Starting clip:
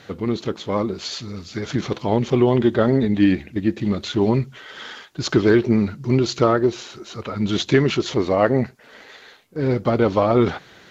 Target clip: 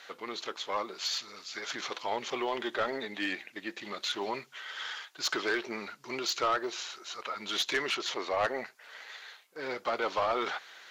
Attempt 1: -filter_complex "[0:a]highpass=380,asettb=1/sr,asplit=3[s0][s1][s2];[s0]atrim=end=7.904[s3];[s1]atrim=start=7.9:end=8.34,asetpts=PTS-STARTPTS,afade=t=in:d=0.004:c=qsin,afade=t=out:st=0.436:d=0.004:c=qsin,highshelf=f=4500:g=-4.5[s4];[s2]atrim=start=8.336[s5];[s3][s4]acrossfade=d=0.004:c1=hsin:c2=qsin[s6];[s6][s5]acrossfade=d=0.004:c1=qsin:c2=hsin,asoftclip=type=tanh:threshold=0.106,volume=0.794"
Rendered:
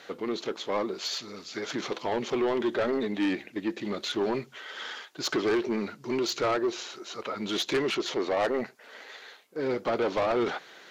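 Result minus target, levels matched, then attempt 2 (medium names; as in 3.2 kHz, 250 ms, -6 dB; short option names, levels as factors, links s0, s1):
1 kHz band -3.5 dB
-filter_complex "[0:a]highpass=900,asettb=1/sr,asplit=3[s0][s1][s2];[s0]atrim=end=7.904[s3];[s1]atrim=start=7.9:end=8.34,asetpts=PTS-STARTPTS,afade=t=in:d=0.004:c=qsin,afade=t=out:st=0.436:d=0.004:c=qsin,highshelf=f=4500:g=-4.5[s4];[s2]atrim=start=8.336[s5];[s3][s4]acrossfade=d=0.004:c1=hsin:c2=qsin[s6];[s6][s5]acrossfade=d=0.004:c1=qsin:c2=hsin,asoftclip=type=tanh:threshold=0.106,volume=0.794"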